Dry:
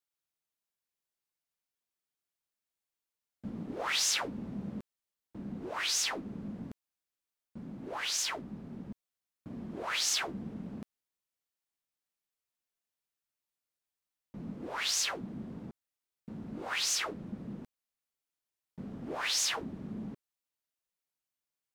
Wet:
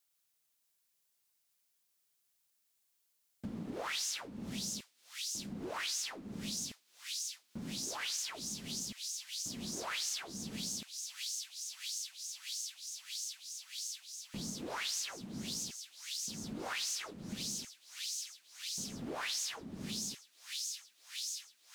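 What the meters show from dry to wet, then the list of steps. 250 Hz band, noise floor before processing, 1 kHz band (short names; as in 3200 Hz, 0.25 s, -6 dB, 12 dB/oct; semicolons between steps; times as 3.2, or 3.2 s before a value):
-3.5 dB, under -85 dBFS, -5.5 dB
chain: high shelf 2900 Hz +10 dB; on a send: thin delay 0.63 s, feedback 83%, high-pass 4200 Hz, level -9 dB; on the sum: compressor 4:1, threshold -43 dBFS, peak gain reduction 20 dB; gain +3.5 dB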